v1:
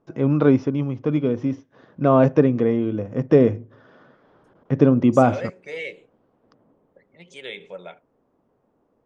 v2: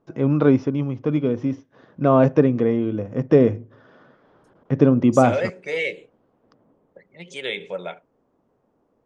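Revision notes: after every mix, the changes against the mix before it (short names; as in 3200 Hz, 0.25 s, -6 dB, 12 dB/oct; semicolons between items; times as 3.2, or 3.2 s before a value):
second voice +7.0 dB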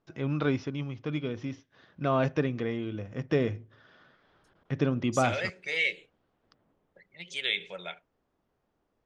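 master: add graphic EQ 125/250/500/1000/4000/8000 Hz -7/-10/-10/-7/+4/-4 dB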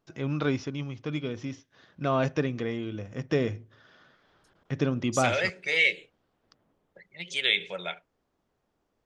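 first voice: remove air absorption 110 m; second voice +5.0 dB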